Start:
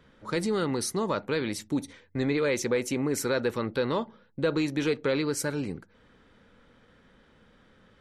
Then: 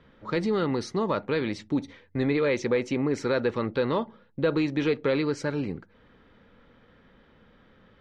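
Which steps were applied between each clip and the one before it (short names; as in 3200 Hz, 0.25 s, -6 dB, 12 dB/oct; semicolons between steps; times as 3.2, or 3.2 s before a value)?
Bessel low-pass 3600 Hz, order 4; notch 1500 Hz, Q 24; gain +2 dB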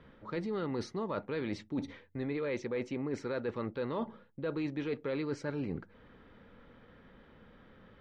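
high shelf 4700 Hz -9 dB; reverse; compressor, threshold -33 dBFS, peak gain reduction 13 dB; reverse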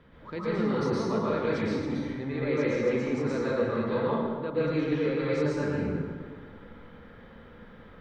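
plate-style reverb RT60 1.7 s, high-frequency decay 0.6×, pre-delay 0.105 s, DRR -7.5 dB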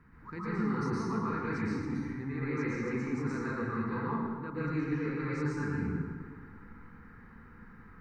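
fixed phaser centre 1400 Hz, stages 4; gain -1 dB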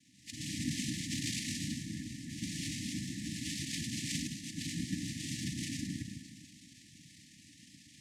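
noise vocoder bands 2; brick-wall FIR band-stop 320–1700 Hz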